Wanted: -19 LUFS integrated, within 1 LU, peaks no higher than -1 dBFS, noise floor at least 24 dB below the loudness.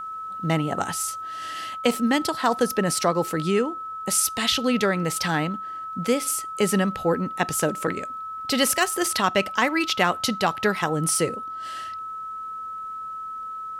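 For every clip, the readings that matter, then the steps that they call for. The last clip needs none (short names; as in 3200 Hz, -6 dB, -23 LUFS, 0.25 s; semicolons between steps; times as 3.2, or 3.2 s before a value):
ticks 16/s; steady tone 1300 Hz; tone level -31 dBFS; loudness -24.5 LUFS; peak -6.5 dBFS; loudness target -19.0 LUFS
-> de-click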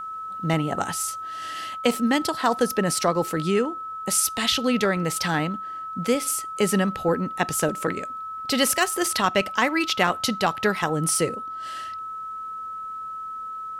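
ticks 0.072/s; steady tone 1300 Hz; tone level -31 dBFS
-> notch 1300 Hz, Q 30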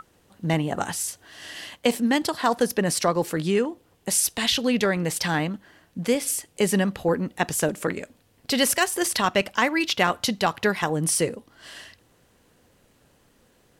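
steady tone none; loudness -24.0 LUFS; peak -6.5 dBFS; loudness target -19.0 LUFS
-> gain +5 dB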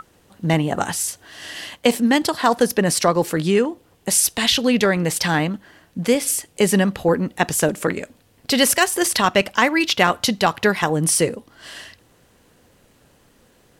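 loudness -19.0 LUFS; peak -1.5 dBFS; noise floor -57 dBFS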